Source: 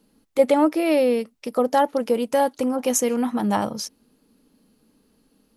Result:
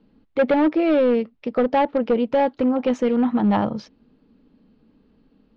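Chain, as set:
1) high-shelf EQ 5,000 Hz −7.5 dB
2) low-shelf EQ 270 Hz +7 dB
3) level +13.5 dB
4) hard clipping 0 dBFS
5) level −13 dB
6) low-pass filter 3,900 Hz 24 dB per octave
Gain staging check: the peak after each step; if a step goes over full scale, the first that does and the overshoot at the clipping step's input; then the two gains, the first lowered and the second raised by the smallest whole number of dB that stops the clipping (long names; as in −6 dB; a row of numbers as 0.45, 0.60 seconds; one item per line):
−5.5, −4.0, +9.5, 0.0, −13.0, −12.0 dBFS
step 3, 9.5 dB
step 3 +3.5 dB, step 5 −3 dB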